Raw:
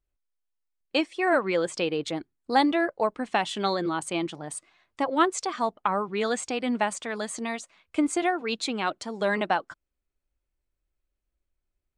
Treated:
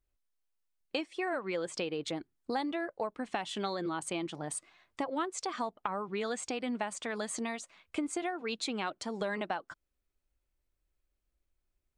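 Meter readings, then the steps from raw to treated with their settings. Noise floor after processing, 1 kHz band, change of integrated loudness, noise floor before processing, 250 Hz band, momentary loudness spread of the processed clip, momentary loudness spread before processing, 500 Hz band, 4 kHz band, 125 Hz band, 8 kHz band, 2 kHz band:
−83 dBFS, −10.0 dB, −9.0 dB, −83 dBFS, −8.5 dB, 5 LU, 9 LU, −8.5 dB, −7.5 dB, −6.5 dB, −5.0 dB, −9.5 dB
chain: downward compressor 4 to 1, threshold −33 dBFS, peak gain reduction 14 dB

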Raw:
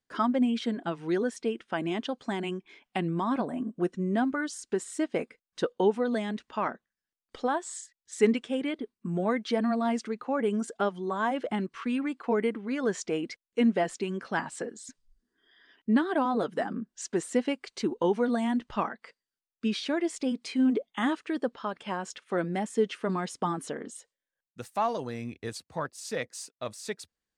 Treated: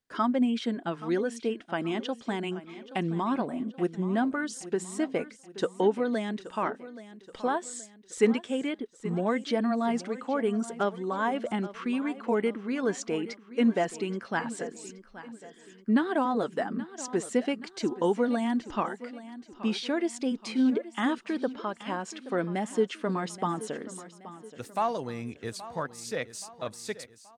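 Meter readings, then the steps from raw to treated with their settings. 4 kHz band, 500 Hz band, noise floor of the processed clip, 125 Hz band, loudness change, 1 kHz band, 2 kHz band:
0.0 dB, 0.0 dB, −55 dBFS, 0.0 dB, 0.0 dB, 0.0 dB, 0.0 dB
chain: repeating echo 826 ms, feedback 45%, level −15.5 dB

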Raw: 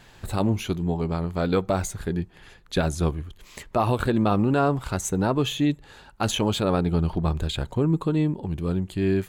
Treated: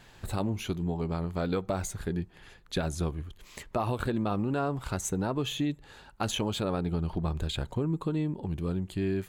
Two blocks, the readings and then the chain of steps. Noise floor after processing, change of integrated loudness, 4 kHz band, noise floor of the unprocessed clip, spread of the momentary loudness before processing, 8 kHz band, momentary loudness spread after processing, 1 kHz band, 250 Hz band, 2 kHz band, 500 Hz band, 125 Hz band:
−55 dBFS, −7.0 dB, −5.5 dB, −52 dBFS, 8 LU, −4.5 dB, 6 LU, −7.5 dB, −7.0 dB, −6.5 dB, −7.5 dB, −6.5 dB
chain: downward compressor 3 to 1, threshold −23 dBFS, peak gain reduction 5.5 dB
level −3.5 dB

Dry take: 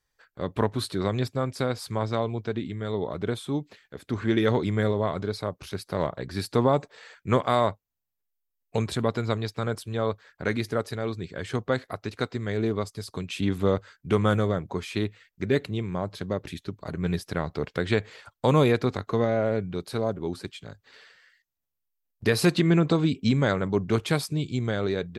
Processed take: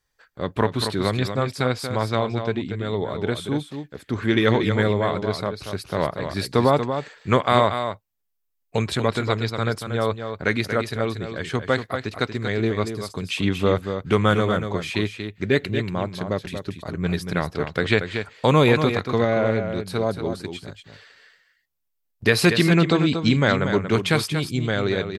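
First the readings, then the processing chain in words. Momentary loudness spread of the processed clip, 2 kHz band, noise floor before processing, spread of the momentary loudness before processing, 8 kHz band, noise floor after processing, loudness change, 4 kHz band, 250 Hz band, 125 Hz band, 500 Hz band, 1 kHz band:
10 LU, +8.5 dB, −80 dBFS, 11 LU, +4.5 dB, −74 dBFS, +4.5 dB, +7.5 dB, +3.5 dB, +3.5 dB, +4.0 dB, +5.5 dB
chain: dynamic equaliser 2,400 Hz, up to +6 dB, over −42 dBFS, Q 0.71
on a send: single-tap delay 234 ms −8 dB
on the sum: level +3 dB

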